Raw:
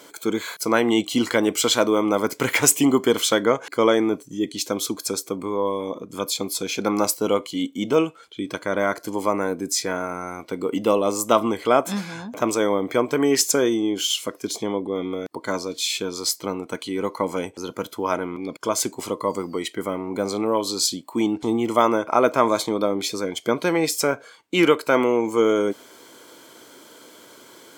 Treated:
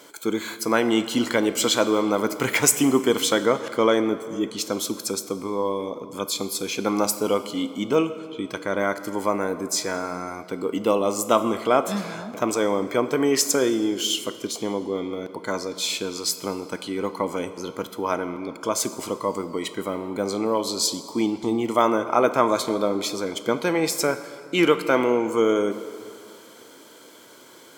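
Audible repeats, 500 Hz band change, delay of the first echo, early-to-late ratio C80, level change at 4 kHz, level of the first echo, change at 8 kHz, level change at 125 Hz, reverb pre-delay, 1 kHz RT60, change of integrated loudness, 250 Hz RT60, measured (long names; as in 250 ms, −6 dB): no echo audible, −1.0 dB, no echo audible, 13.0 dB, −1.5 dB, no echo audible, −1.5 dB, −1.5 dB, 13 ms, 2.6 s, −1.5 dB, 2.5 s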